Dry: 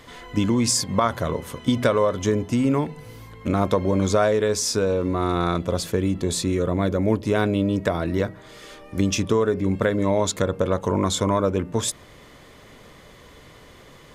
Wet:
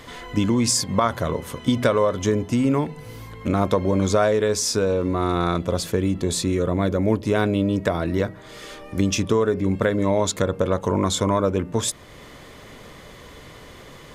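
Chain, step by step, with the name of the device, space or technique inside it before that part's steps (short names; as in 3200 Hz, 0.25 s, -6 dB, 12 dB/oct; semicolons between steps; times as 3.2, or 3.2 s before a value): parallel compression (in parallel at -3.5 dB: compressor, threshold -39 dBFS, peak gain reduction 22 dB)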